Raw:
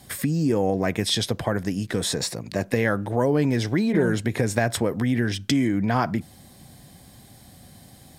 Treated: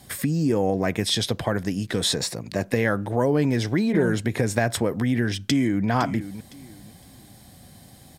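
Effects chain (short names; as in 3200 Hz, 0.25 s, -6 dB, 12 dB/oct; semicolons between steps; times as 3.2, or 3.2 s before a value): 1.24–2.16 dynamic EQ 3600 Hz, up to +6 dB, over -43 dBFS, Q 1.4; 5.37–5.89 echo throw 0.51 s, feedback 25%, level -12 dB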